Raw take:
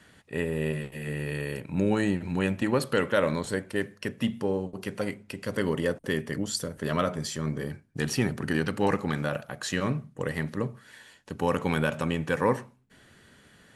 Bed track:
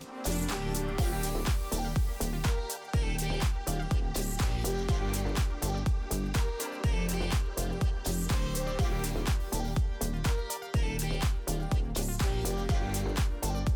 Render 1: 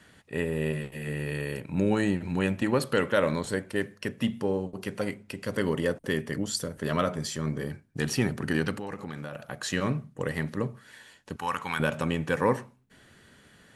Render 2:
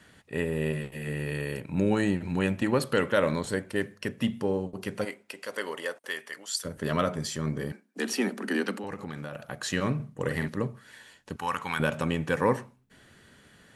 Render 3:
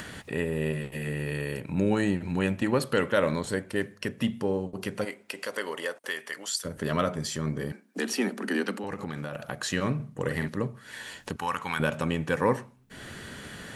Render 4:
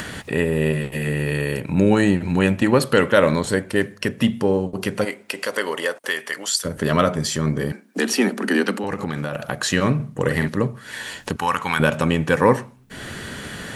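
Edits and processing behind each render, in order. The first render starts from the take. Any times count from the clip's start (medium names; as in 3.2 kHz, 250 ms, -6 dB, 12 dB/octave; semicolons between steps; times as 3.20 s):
8.75–9.48 s: compression 4:1, threshold -34 dBFS; 11.36–11.80 s: resonant low shelf 710 Hz -11.5 dB, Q 1.5
5.04–6.64 s: high-pass 390 Hz -> 1.2 kHz; 7.72–8.84 s: steep high-pass 190 Hz 96 dB/octave; 9.95–10.48 s: doubling 47 ms -6 dB
upward compressor, threshold -28 dBFS
trim +9 dB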